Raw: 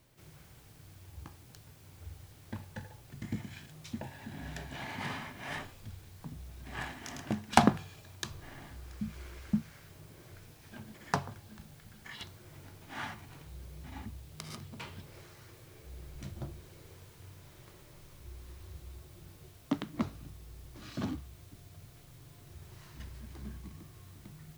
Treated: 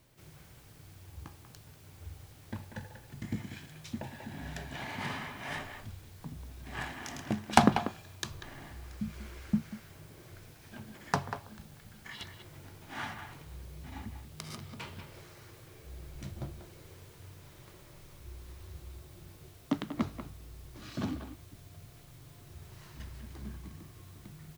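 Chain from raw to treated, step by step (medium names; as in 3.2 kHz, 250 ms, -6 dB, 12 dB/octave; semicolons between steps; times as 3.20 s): speakerphone echo 190 ms, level -8 dB; trim +1 dB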